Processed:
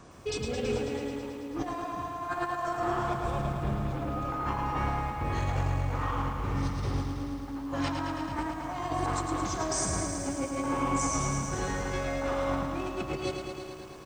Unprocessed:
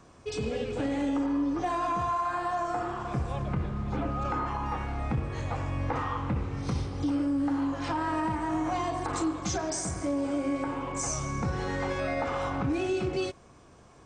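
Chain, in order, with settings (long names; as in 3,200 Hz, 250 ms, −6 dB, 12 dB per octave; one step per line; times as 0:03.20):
compressor whose output falls as the input rises −33 dBFS, ratio −0.5
single-tap delay 375 ms −16.5 dB
feedback echo at a low word length 109 ms, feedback 80%, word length 10 bits, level −6 dB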